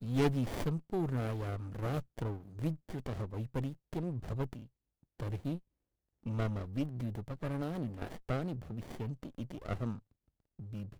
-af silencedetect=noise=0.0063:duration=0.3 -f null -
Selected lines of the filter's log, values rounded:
silence_start: 4.62
silence_end: 5.20 | silence_duration: 0.57
silence_start: 5.58
silence_end: 6.26 | silence_duration: 0.68
silence_start: 9.99
silence_end: 10.59 | silence_duration: 0.61